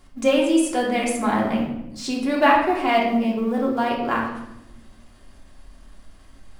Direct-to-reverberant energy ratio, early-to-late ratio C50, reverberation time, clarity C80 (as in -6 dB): -3.5 dB, 4.5 dB, 0.90 s, 7.0 dB